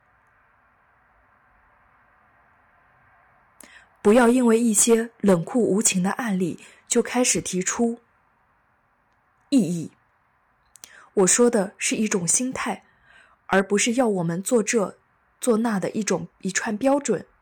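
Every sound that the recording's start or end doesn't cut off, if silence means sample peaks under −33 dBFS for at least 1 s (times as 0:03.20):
0:03.61–0:07.95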